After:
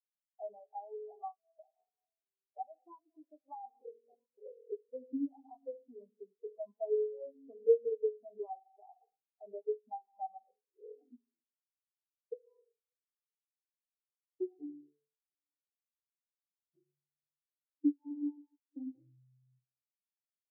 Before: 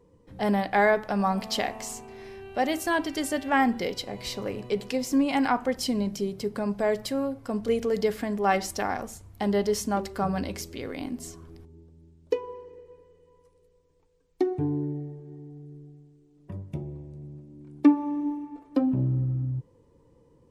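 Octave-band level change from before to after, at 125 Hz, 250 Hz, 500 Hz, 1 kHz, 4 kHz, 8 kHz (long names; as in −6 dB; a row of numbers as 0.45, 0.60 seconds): below −40 dB, −16.5 dB, −9.5 dB, −18.5 dB, below −40 dB, below −40 dB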